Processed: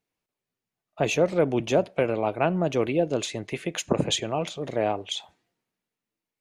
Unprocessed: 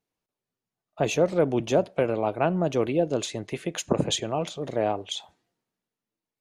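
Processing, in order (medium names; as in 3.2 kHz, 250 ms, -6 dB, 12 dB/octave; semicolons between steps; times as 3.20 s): peaking EQ 2.3 kHz +4.5 dB 0.78 oct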